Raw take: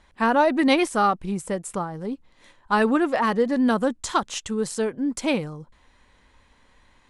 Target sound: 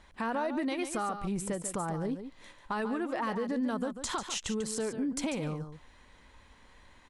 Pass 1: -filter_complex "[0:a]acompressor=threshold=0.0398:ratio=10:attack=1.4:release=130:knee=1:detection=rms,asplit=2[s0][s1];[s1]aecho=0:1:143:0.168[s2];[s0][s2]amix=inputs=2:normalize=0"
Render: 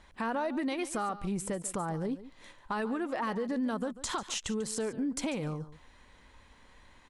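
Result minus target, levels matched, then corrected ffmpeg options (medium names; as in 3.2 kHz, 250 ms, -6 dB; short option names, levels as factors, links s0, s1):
echo-to-direct -6 dB
-filter_complex "[0:a]acompressor=threshold=0.0398:ratio=10:attack=1.4:release=130:knee=1:detection=rms,asplit=2[s0][s1];[s1]aecho=0:1:143:0.335[s2];[s0][s2]amix=inputs=2:normalize=0"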